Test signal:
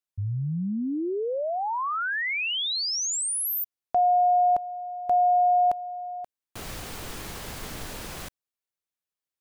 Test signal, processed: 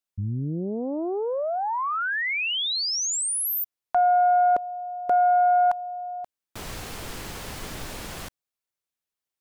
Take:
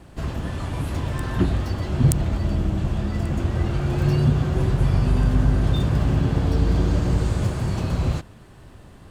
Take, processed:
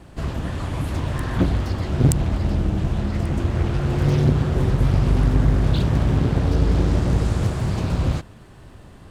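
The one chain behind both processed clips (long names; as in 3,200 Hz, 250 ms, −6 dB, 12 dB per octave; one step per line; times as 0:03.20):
highs frequency-modulated by the lows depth 0.97 ms
level +1.5 dB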